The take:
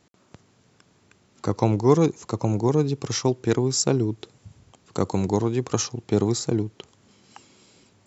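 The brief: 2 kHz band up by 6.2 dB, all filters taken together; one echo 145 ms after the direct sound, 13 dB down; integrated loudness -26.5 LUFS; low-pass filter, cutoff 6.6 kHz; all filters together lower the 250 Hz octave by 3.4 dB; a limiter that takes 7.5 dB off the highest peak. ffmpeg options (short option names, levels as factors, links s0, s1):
-af "lowpass=6600,equalizer=f=250:t=o:g=-5,equalizer=f=2000:t=o:g=8,alimiter=limit=0.224:level=0:latency=1,aecho=1:1:145:0.224,volume=1.06"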